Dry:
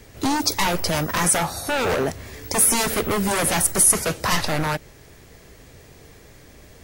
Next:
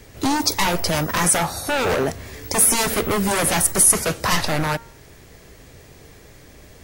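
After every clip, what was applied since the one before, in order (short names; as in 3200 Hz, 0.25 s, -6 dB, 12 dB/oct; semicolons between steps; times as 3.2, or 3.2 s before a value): de-hum 230.6 Hz, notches 9; gain +1.5 dB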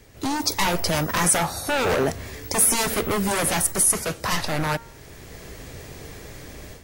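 AGC gain up to 12 dB; gain -6 dB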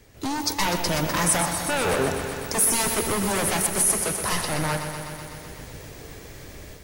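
lo-fi delay 0.125 s, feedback 80%, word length 8-bit, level -8 dB; gain -2.5 dB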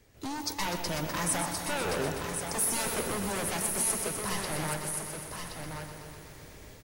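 echo 1.073 s -6.5 dB; gain -8.5 dB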